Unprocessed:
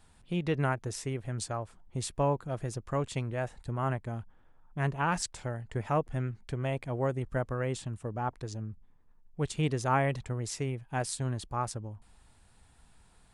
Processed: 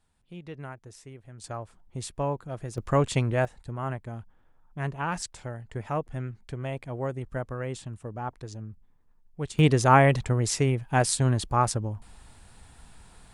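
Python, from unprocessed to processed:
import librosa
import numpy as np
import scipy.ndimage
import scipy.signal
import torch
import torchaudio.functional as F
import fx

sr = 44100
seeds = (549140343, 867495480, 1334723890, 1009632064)

y = fx.gain(x, sr, db=fx.steps((0.0, -11.0), (1.44, -1.0), (2.78, 8.5), (3.45, -1.0), (9.59, 9.5)))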